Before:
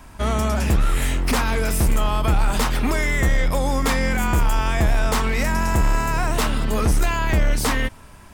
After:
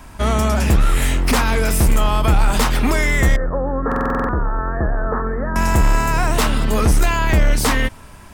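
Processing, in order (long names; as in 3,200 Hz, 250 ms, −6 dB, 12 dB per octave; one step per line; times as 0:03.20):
0:03.36–0:05.56: Chebyshev low-pass with heavy ripple 1,800 Hz, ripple 6 dB
buffer that repeats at 0:03.87, samples 2,048, times 8
level +4 dB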